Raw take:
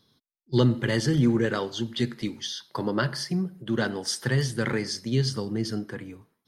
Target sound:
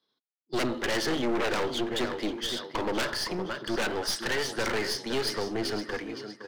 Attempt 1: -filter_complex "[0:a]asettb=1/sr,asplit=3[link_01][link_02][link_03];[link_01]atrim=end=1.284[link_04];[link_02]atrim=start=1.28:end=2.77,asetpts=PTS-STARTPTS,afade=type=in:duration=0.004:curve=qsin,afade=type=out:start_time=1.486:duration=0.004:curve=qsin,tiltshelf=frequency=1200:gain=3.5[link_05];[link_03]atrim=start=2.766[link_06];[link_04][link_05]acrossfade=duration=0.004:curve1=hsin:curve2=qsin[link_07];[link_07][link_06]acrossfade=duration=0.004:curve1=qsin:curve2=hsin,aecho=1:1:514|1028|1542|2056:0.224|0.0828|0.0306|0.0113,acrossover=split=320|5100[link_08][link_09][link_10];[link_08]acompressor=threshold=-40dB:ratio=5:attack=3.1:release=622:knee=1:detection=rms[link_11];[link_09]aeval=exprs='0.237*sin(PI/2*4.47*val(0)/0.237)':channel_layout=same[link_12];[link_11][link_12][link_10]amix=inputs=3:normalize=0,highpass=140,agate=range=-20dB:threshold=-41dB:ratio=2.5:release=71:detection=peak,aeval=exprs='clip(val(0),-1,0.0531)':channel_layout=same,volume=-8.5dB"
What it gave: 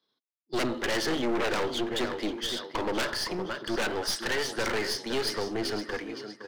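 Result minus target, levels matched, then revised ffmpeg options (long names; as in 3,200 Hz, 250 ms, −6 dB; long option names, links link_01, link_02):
downward compressor: peak gain reduction +7 dB
-filter_complex "[0:a]asettb=1/sr,asplit=3[link_01][link_02][link_03];[link_01]atrim=end=1.284[link_04];[link_02]atrim=start=1.28:end=2.77,asetpts=PTS-STARTPTS,afade=type=in:duration=0.004:curve=qsin,afade=type=out:start_time=1.486:duration=0.004:curve=qsin,tiltshelf=frequency=1200:gain=3.5[link_05];[link_03]atrim=start=2.766[link_06];[link_04][link_05]acrossfade=duration=0.004:curve1=hsin:curve2=qsin[link_07];[link_07][link_06]acrossfade=duration=0.004:curve1=qsin:curve2=hsin,aecho=1:1:514|1028|1542|2056:0.224|0.0828|0.0306|0.0113,acrossover=split=320|5100[link_08][link_09][link_10];[link_08]acompressor=threshold=-31dB:ratio=5:attack=3.1:release=622:knee=1:detection=rms[link_11];[link_09]aeval=exprs='0.237*sin(PI/2*4.47*val(0)/0.237)':channel_layout=same[link_12];[link_11][link_12][link_10]amix=inputs=3:normalize=0,highpass=140,agate=range=-20dB:threshold=-41dB:ratio=2.5:release=71:detection=peak,aeval=exprs='clip(val(0),-1,0.0531)':channel_layout=same,volume=-8.5dB"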